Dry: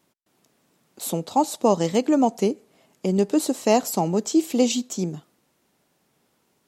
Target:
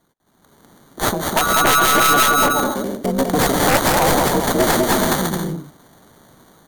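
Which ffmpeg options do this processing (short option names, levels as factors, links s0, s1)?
-filter_complex "[0:a]asettb=1/sr,asplit=3[s0][s1][s2];[s0]atrim=end=1.374[s3];[s1]atrim=start=1.37:end=2.33,asetpts=PTS-STARTPTS,afade=t=in:d=0.004:c=qsin,afade=t=out:st=0.956:d=0.004:c=qsin,aeval=exprs='val(0)+0.0891*sin(2*PI*1300*n/s)':c=same[s4];[s2]atrim=start=2.326[s5];[s3][s4]acrossfade=d=0.004:c1=hsin:c2=qsin[s6];[s6][s5]acrossfade=d=0.004:c1=qsin:c2=hsin,aecho=1:1:200|330|414.5|469.4|505.1:0.631|0.398|0.251|0.158|0.1,asettb=1/sr,asplit=3[s7][s8][s9];[s7]atrim=end=3.064[s10];[s8]atrim=start=3.06:end=4.3,asetpts=PTS-STARTPTS,afade=t=in:d=0.004:c=qsin,afade=t=out:st=1.236:d=0.004:c=qsin,adynamicequalizer=threshold=0.00708:dfrequency=6800:dqfactor=1.3:tfrequency=6800:tqfactor=1.3:attack=5:release=100:ratio=0.375:range=3:mode=boostabove:tftype=bell[s11];[s9]atrim=start=4.296[s12];[s10][s11]acrossfade=d=0.004:c1=hsin:c2=qsin[s13];[s13][s12]acrossfade=d=0.004:c1=qsin:c2=hsin,acrossover=split=440|1400[s14][s15][s16];[s14]acompressor=threshold=0.0158:ratio=6[s17];[s15]aeval=exprs='val(0)*sin(2*PI*140*n/s)':c=same[s18];[s16]acrusher=samples=17:mix=1:aa=0.000001[s19];[s17][s18][s19]amix=inputs=3:normalize=0,dynaudnorm=f=120:g=9:m=5.01,equalizer=f=13000:t=o:w=1.8:g=10,aeval=exprs='1.78*(cos(1*acos(clip(val(0)/1.78,-1,1)))-cos(1*PI/2))+0.447*(cos(3*acos(clip(val(0)/1.78,-1,1)))-cos(3*PI/2))+0.447*(cos(7*acos(clip(val(0)/1.78,-1,1)))-cos(7*PI/2))+0.1*(cos(8*acos(clip(val(0)/1.78,-1,1)))-cos(8*PI/2))':c=same,alimiter=level_in=1.12:limit=0.891:release=50:level=0:latency=1,volume=0.891"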